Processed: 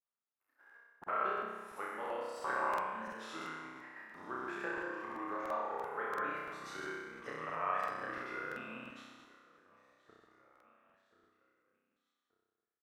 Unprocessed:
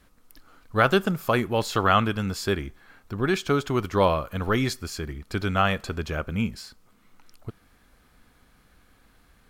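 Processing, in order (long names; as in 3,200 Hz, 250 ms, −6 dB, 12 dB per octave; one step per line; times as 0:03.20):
pitch shifter swept by a sawtooth +9 semitones, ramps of 595 ms
downward compressor 10 to 1, threshold −36 dBFS, peak gain reduction 20.5 dB
high-pass filter 690 Hz 12 dB per octave
noise gate −55 dBFS, range −39 dB
repeating echo 787 ms, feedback 48%, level −21 dB
granular cloud, pitch spread up and down by 0 semitones
flutter between parallel walls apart 4 metres, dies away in 1 s
wrong playback speed 45 rpm record played at 33 rpm
high shelf with overshoot 2,500 Hz −12 dB, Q 1.5
regular buffer underruns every 0.34 s, samples 2,048, repeat, from 0:00.31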